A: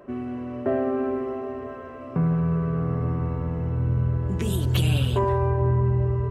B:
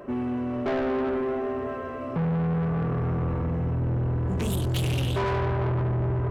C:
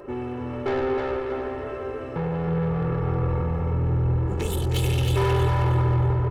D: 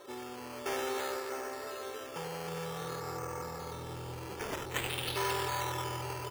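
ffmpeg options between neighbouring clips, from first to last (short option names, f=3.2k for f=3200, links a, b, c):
-af "asoftclip=type=tanh:threshold=-29dB,volume=5.5dB"
-af "aecho=1:1:2.3:0.65,aecho=1:1:315|630|945|1260:0.562|0.18|0.0576|0.0184"
-af "highpass=f=1.3k:p=1,acrusher=samples=9:mix=1:aa=0.000001:lfo=1:lforange=5.4:lforate=0.53,volume=-1.5dB"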